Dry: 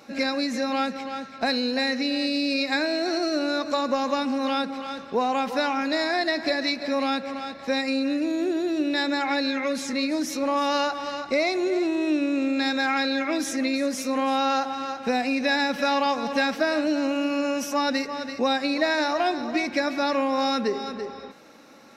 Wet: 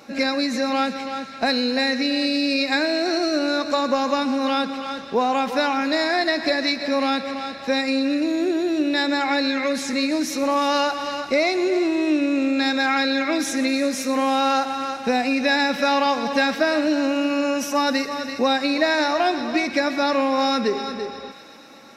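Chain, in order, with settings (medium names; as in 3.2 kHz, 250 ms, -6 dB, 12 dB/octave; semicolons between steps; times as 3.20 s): feedback echo behind a high-pass 123 ms, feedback 82%, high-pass 1.4 kHz, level -15 dB; trim +3.5 dB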